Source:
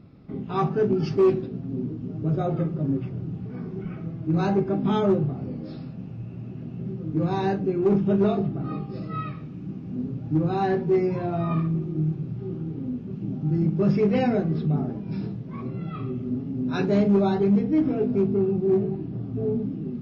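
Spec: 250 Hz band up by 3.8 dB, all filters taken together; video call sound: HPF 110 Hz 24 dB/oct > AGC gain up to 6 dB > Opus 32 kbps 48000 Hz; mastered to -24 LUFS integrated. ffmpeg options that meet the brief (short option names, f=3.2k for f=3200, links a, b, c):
-af "highpass=f=110:w=0.5412,highpass=f=110:w=1.3066,equalizer=f=250:t=o:g=5.5,dynaudnorm=m=6dB,volume=-2.5dB" -ar 48000 -c:a libopus -b:a 32k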